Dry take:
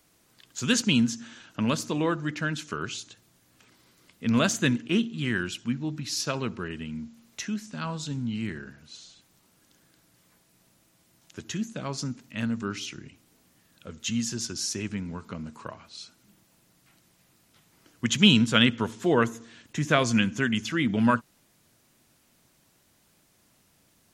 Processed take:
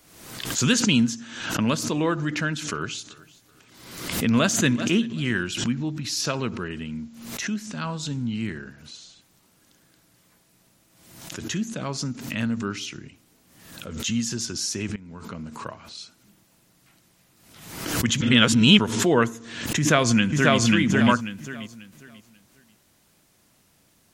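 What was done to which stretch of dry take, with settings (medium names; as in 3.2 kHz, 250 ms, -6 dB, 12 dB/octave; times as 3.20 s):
2.31–5.47 s: feedback delay 382 ms, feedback 30%, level -21.5 dB
14.96–15.72 s: fade in equal-power, from -18.5 dB
18.21–18.79 s: reverse
19.78–20.59 s: echo throw 540 ms, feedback 25%, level -0.5 dB
whole clip: swell ahead of each attack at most 59 dB/s; trim +2.5 dB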